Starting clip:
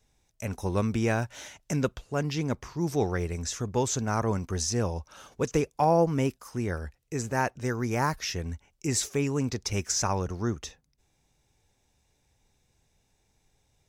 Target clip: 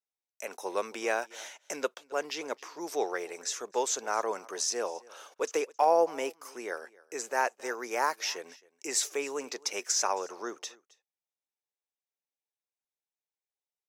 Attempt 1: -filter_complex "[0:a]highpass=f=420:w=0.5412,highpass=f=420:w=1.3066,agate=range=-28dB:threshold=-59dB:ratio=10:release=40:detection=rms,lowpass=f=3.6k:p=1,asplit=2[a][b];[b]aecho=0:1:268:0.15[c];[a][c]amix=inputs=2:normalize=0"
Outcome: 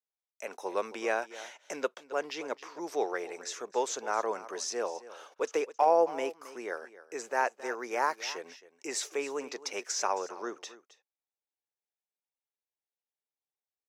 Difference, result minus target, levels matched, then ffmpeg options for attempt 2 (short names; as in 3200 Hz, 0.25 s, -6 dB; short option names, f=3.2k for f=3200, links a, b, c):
echo-to-direct +6.5 dB; 4000 Hz band -3.0 dB
-filter_complex "[0:a]highpass=f=420:w=0.5412,highpass=f=420:w=1.3066,agate=range=-28dB:threshold=-59dB:ratio=10:release=40:detection=rms,asplit=2[a][b];[b]aecho=0:1:268:0.0708[c];[a][c]amix=inputs=2:normalize=0"